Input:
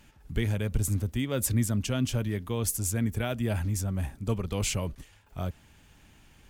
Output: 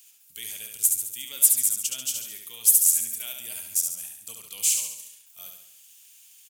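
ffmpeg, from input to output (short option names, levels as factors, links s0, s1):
-filter_complex "[0:a]aderivative,aexciter=amount=1.4:drive=9.7:freq=2500,asplit=2[s0][s1];[s1]aecho=0:1:70|140|210|280|350|420:0.562|0.287|0.146|0.0746|0.038|0.0194[s2];[s0][s2]amix=inputs=2:normalize=0"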